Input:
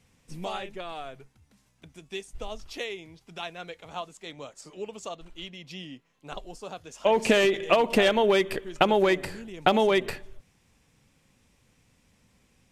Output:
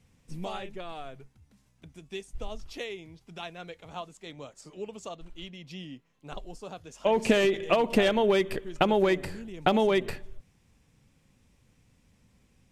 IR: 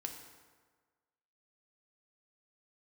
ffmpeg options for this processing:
-af "lowshelf=f=300:g=7,volume=-4dB"

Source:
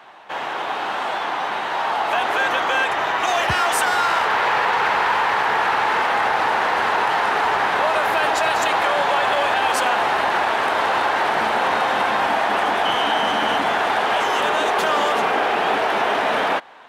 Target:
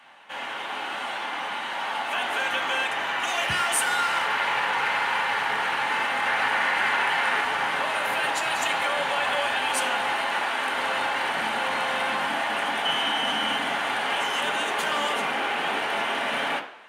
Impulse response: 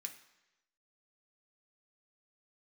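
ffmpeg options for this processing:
-filter_complex "[0:a]asettb=1/sr,asplit=3[a][b][c];[a]atrim=end=6.264[d];[b]atrim=start=6.26:end=7.41,asetpts=PTS-STARTPTS,afade=t=in:d=0.004:c=qsin,afade=t=out:st=1.146:d=0.004:c=qsin,equalizer=f=1.9k:w=1.2:g=4.5[e];[c]atrim=start=7.406[f];[d][e]acrossfade=d=0.004:c1=hsin:c2=qsin[g];[g][f]acrossfade=d=0.004:c1=qsin:c2=hsin,asettb=1/sr,asplit=3[h][i][j];[h]atrim=end=10.124[k];[i]atrim=start=10.12:end=10.73,asetpts=PTS-STARTPTS,afade=t=in:d=0.004:c=qsin,afade=t=out:st=0.606:d=0.004:c=qsin,highpass=f=180:p=1[l];[j]atrim=start=10.726[m];[k][l]acrossfade=d=0.004:c1=hsin:c2=qsin[n];[n][m]acrossfade=d=0.004:c1=qsin:c2=hsin[o];[1:a]atrim=start_sample=2205,asetrate=52920,aresample=44100[p];[o][p]afir=irnorm=-1:irlink=0,volume=2dB"

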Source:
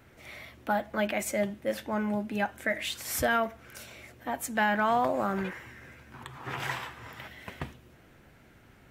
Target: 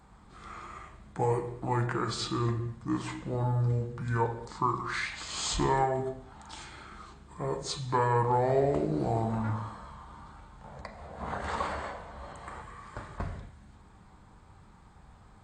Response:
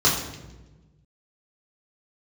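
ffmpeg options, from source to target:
-filter_complex "[0:a]equalizer=f=10k:w=5.5:g=-6,asplit=2[a][b];[1:a]atrim=start_sample=2205,afade=t=out:st=0.19:d=0.01,atrim=end_sample=8820[c];[b][c]afir=irnorm=-1:irlink=0,volume=-22.5dB[d];[a][d]amix=inputs=2:normalize=0,asetrate=25442,aresample=44100"

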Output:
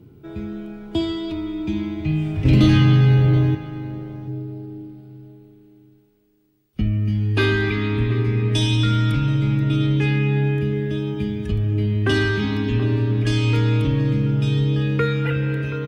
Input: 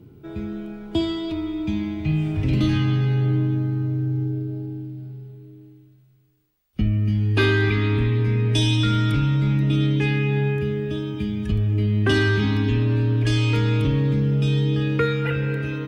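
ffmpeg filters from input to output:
-filter_complex "[0:a]asettb=1/sr,asplit=3[a][b][c];[a]atrim=end=2.454[d];[b]atrim=start=2.45:end=3.55,asetpts=PTS-STARTPTS,afade=t=in:d=0.004:c=qsin,afade=t=out:st=1.096:d=0.004:c=qsin,acontrast=80[e];[c]atrim=start=3.546[f];[d][e]acrossfade=d=0.004:c1=hsin:c2=qsin[g];[g][f]acrossfade=d=0.004:c1=qsin:c2=hsin,asplit=2[h][i];[i]adelay=729,lowpass=f=1.2k:p=1,volume=-10dB,asplit=2[j][k];[k]adelay=729,lowpass=f=1.2k:p=1,volume=0.15[l];[j][l]amix=inputs=2:normalize=0[m];[h][m]amix=inputs=2:normalize=0"

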